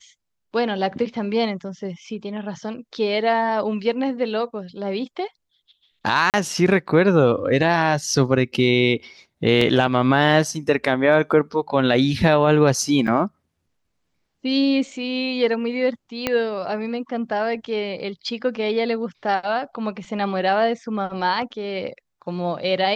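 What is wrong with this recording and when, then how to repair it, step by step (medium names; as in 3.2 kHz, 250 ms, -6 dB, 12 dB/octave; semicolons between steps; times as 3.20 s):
6.30–6.34 s: dropout 38 ms
9.61 s: dropout 3.9 ms
13.07–13.08 s: dropout 6.1 ms
16.27 s: pop -6 dBFS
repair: de-click; interpolate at 6.30 s, 38 ms; interpolate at 9.61 s, 3.9 ms; interpolate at 13.07 s, 6.1 ms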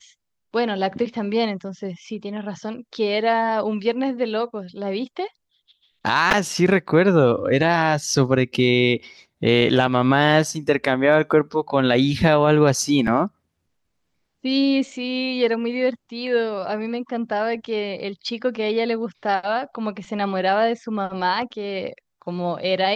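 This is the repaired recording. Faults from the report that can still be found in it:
16.27 s: pop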